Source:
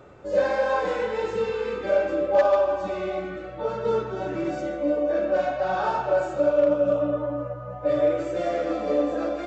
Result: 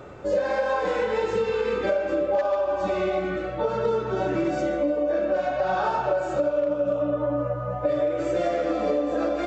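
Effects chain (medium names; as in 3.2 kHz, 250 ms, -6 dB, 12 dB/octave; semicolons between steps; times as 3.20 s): compression 10:1, threshold -27 dBFS, peak gain reduction 12.5 dB; trim +6.5 dB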